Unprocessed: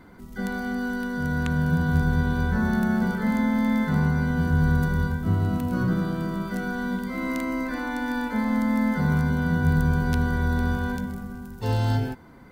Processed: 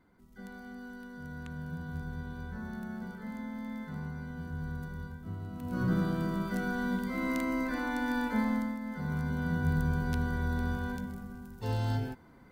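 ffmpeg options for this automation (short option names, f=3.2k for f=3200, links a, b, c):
-af "volume=5dB,afade=t=in:st=5.55:d=0.41:silence=0.223872,afade=t=out:st=8.4:d=0.39:silence=0.223872,afade=t=in:st=8.79:d=0.68:silence=0.354813"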